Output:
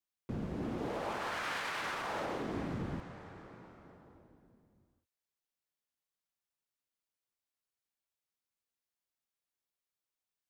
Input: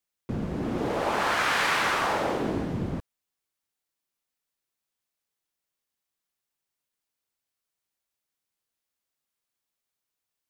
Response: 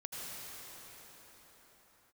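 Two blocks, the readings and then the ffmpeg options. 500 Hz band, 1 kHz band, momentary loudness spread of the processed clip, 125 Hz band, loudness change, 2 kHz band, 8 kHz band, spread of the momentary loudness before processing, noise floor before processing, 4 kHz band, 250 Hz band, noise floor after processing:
-10.5 dB, -12.0 dB, 17 LU, -8.5 dB, -11.5 dB, -12.5 dB, -13.5 dB, 11 LU, under -85 dBFS, -12.5 dB, -9.0 dB, under -85 dBFS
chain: -filter_complex "[0:a]asplit=2[s0][s1];[1:a]atrim=start_sample=2205,lowpass=8200[s2];[s1][s2]afir=irnorm=-1:irlink=0,volume=0.282[s3];[s0][s3]amix=inputs=2:normalize=0,alimiter=limit=0.106:level=0:latency=1:release=124,volume=0.355"

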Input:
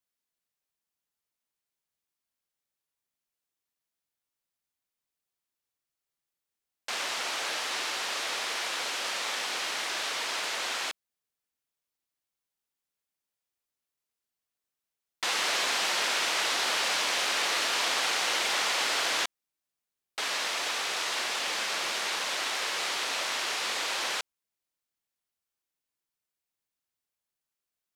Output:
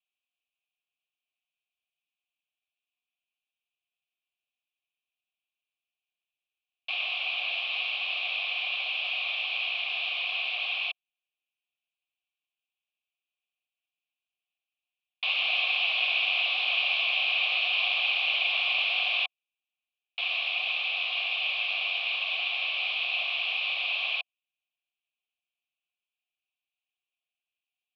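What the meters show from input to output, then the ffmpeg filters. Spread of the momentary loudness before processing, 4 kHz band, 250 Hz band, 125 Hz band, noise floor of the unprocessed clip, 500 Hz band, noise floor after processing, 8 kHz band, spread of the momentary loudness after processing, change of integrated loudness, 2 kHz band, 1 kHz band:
6 LU, +2.0 dB, under -25 dB, no reading, under -85 dBFS, -8.0 dB, under -85 dBFS, under -30 dB, 6 LU, +2.0 dB, +3.5 dB, -8.0 dB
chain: -filter_complex "[0:a]aexciter=amount=13.2:drive=6.8:freq=2200,highpass=f=250:t=q:w=0.5412,highpass=f=250:t=q:w=1.307,lowpass=f=3400:t=q:w=0.5176,lowpass=f=3400:t=q:w=0.7071,lowpass=f=3400:t=q:w=1.932,afreqshift=55,asplit=3[s0][s1][s2];[s0]bandpass=f=730:t=q:w=8,volume=1[s3];[s1]bandpass=f=1090:t=q:w=8,volume=0.501[s4];[s2]bandpass=f=2440:t=q:w=8,volume=0.355[s5];[s3][s4][s5]amix=inputs=3:normalize=0"

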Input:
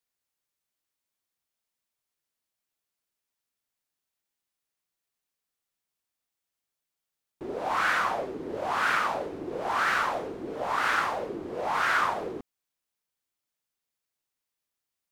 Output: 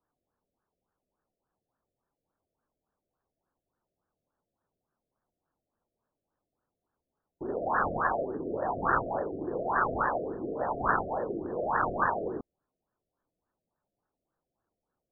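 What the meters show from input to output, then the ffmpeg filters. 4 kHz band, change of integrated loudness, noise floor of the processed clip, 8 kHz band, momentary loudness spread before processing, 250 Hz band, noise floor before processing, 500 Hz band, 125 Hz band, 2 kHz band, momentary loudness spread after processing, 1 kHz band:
under -40 dB, -2.5 dB, under -85 dBFS, under -30 dB, 11 LU, +2.5 dB, under -85 dBFS, +1.5 dB, +5.5 dB, -6.0 dB, 7 LU, -1.5 dB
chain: -af "acrusher=samples=16:mix=1:aa=0.000001,afftfilt=real='re*lt(b*sr/1024,690*pow(1900/690,0.5+0.5*sin(2*PI*3.5*pts/sr)))':imag='im*lt(b*sr/1024,690*pow(1900/690,0.5+0.5*sin(2*PI*3.5*pts/sr)))':win_size=1024:overlap=0.75,volume=1.19"

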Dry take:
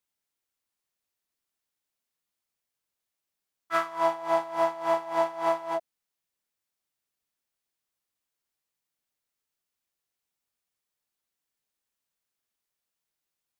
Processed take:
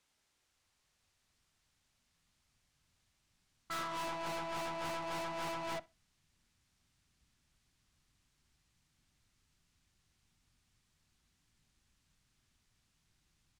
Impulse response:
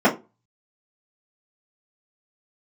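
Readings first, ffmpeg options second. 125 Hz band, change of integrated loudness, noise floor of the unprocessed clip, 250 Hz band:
+2.0 dB, -11.5 dB, under -85 dBFS, -7.5 dB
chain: -filter_complex "[0:a]lowpass=7500,asubboost=boost=9.5:cutoff=160,acompressor=threshold=0.0251:ratio=5,aeval=exprs='(tanh(316*val(0)+0.3)-tanh(0.3))/316':c=same,asplit=2[s0][s1];[s1]adelay=63,lowpass=f=4200:p=1,volume=0.0891,asplit=2[s2][s3];[s3]adelay=63,lowpass=f=4200:p=1,volume=0.22[s4];[s0][s2][s4]amix=inputs=3:normalize=0,asplit=2[s5][s6];[1:a]atrim=start_sample=2205[s7];[s6][s7]afir=irnorm=-1:irlink=0,volume=0.00708[s8];[s5][s8]amix=inputs=2:normalize=0,volume=3.98"

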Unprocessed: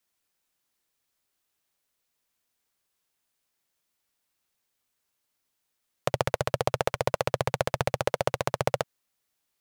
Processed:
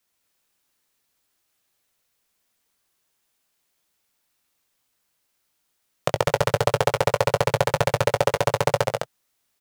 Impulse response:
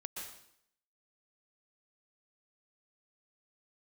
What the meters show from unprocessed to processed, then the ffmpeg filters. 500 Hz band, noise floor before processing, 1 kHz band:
+7.0 dB, -80 dBFS, +6.0 dB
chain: -filter_complex "[0:a]asplit=2[s0][s1];[s1]adelay=19,volume=0.282[s2];[s0][s2]amix=inputs=2:normalize=0,asplit=2[s3][s4];[s4]aecho=0:1:131.2|207:0.447|0.631[s5];[s3][s5]amix=inputs=2:normalize=0,volume=1.58"

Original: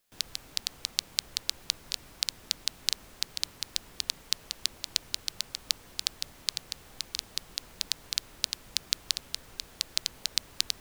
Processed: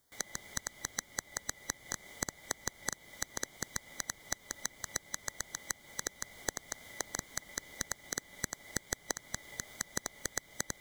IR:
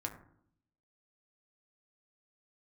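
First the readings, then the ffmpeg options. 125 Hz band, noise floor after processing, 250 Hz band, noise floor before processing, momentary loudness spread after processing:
+4.0 dB, -61 dBFS, +6.5 dB, -54 dBFS, 3 LU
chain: -filter_complex "[0:a]afftfilt=real='real(if(lt(b,920),b+92*(1-2*mod(floor(b/92),2)),b),0)':imag='imag(if(lt(b,920),b+92*(1-2*mod(floor(b/92),2)),b),0)':win_size=2048:overlap=0.75,acrossover=split=230|6800[s0][s1][s2];[s0]acompressor=threshold=0.00251:ratio=4[s3];[s1]acompressor=threshold=0.0126:ratio=4[s4];[s2]acompressor=threshold=0.00708:ratio=4[s5];[s3][s4][s5]amix=inputs=3:normalize=0,asplit=2[s6][s7];[s7]acrusher=samples=31:mix=1:aa=0.000001,volume=0.398[s8];[s6][s8]amix=inputs=2:normalize=0,asuperstop=centerf=2600:order=4:qfactor=3.3,volume=1.12"

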